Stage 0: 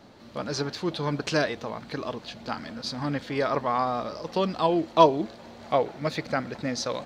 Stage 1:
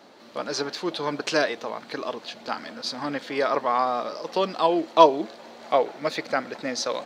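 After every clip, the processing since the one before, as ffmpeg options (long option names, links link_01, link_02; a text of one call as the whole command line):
ffmpeg -i in.wav -af "highpass=320,volume=3dB" out.wav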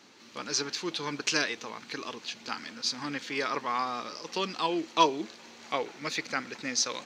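ffmpeg -i in.wav -af "equalizer=frequency=100:width_type=o:width=0.67:gain=4,equalizer=frequency=630:width_type=o:width=0.67:gain=-12,equalizer=frequency=2500:width_type=o:width=0.67:gain=6,equalizer=frequency=6300:width_type=o:width=0.67:gain=10,volume=-4.5dB" out.wav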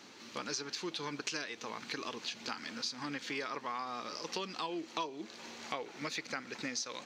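ffmpeg -i in.wav -af "acompressor=threshold=-38dB:ratio=6,volume=2dB" out.wav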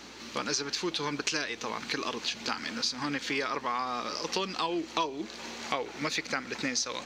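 ffmpeg -i in.wav -af "aeval=exprs='val(0)+0.000282*(sin(2*PI*60*n/s)+sin(2*PI*2*60*n/s)/2+sin(2*PI*3*60*n/s)/3+sin(2*PI*4*60*n/s)/4+sin(2*PI*5*60*n/s)/5)':channel_layout=same,volume=7.5dB" out.wav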